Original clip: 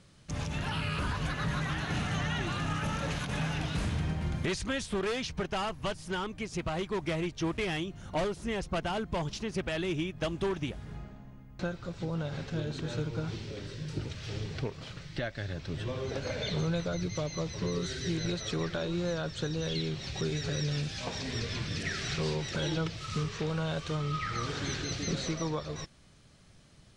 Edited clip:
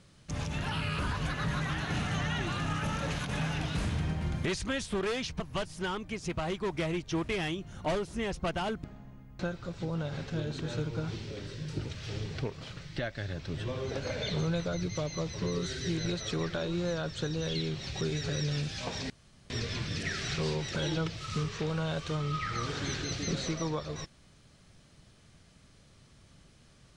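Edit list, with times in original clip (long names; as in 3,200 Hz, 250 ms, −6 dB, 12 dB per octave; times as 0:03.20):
0:05.40–0:05.69: remove
0:09.13–0:11.04: remove
0:21.30: splice in room tone 0.40 s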